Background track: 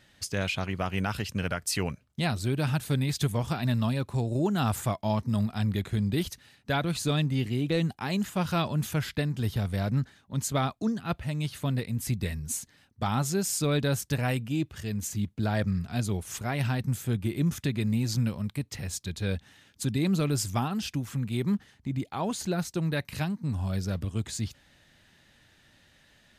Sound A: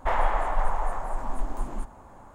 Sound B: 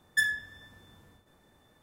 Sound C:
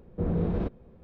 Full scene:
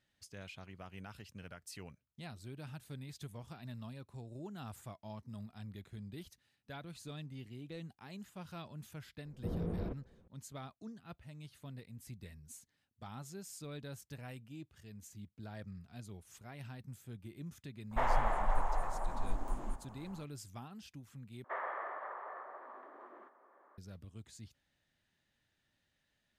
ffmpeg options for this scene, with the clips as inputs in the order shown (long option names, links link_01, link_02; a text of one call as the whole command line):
ffmpeg -i bed.wav -i cue0.wav -i cue1.wav -i cue2.wav -filter_complex "[1:a]asplit=2[link_01][link_02];[0:a]volume=-20dB[link_03];[3:a]lowpass=2900[link_04];[link_02]highpass=frequency=340:width=0.5412,highpass=frequency=340:width=1.3066,equalizer=frequency=380:width_type=q:width=4:gain=6,equalizer=frequency=580:width_type=q:width=4:gain=4,equalizer=frequency=850:width_type=q:width=4:gain=-5,equalizer=frequency=1200:width_type=q:width=4:gain=8,equalizer=frequency=1800:width_type=q:width=4:gain=9,equalizer=frequency=2700:width_type=q:width=4:gain=-6,lowpass=frequency=3000:width=0.5412,lowpass=frequency=3000:width=1.3066[link_05];[link_03]asplit=2[link_06][link_07];[link_06]atrim=end=21.444[link_08];[link_05]atrim=end=2.34,asetpts=PTS-STARTPTS,volume=-16dB[link_09];[link_07]atrim=start=23.776[link_10];[link_04]atrim=end=1.03,asetpts=PTS-STARTPTS,volume=-10.5dB,afade=type=in:duration=0.004:curve=hsin,afade=type=out:start_time=1.026:duration=0.004:curve=hsin,adelay=9250[link_11];[link_01]atrim=end=2.34,asetpts=PTS-STARTPTS,volume=-7dB,afade=type=in:duration=0.004:curve=hsin,afade=type=out:start_time=2.336:duration=0.004:curve=hsin,adelay=17910[link_12];[link_08][link_09]acrossfade=duration=0.004:curve1=hsin:curve2=hsin[link_13];[link_13][link_10]acrossfade=duration=0.004:curve1=hsin:curve2=hsin[link_14];[link_14][link_11][link_12]amix=inputs=3:normalize=0" out.wav